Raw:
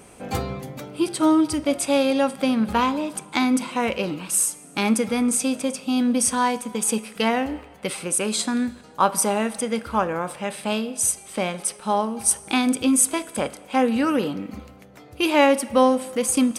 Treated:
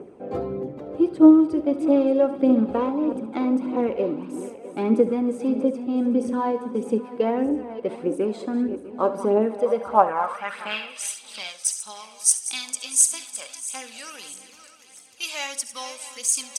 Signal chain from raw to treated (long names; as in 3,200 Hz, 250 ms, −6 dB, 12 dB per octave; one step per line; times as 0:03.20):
feedback delay that plays each chunk backwards 326 ms, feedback 63%, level −13 dB
reversed playback
upward compression, threshold −33 dBFS
reversed playback
band-pass filter sweep 380 Hz → 6,400 Hz, 0:09.46–0:11.67
phase shifter 1.6 Hz, delay 1.9 ms, feedback 40%
on a send: single-tap delay 71 ms −15 dB
on the sum: level +7 dB